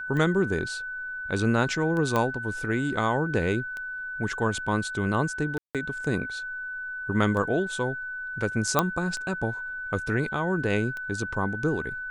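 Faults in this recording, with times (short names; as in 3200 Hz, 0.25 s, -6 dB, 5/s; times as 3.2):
tick 33 1/3 rpm -22 dBFS
tone 1500 Hz -32 dBFS
2.16 pop -12 dBFS
5.58–5.75 gap 0.167 s
8.79 pop -6 dBFS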